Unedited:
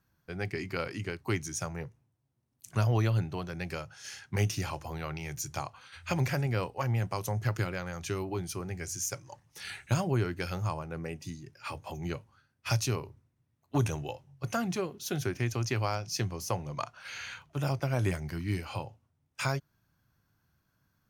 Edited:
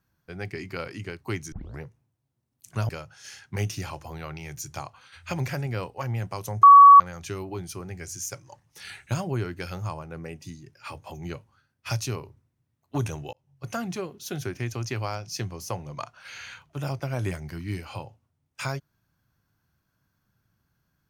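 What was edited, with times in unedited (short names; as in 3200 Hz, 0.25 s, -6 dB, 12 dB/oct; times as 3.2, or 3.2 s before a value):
1.52 tape start 0.29 s
2.89–3.69 cut
7.43–7.8 bleep 1130 Hz -6.5 dBFS
14.13–14.51 fade in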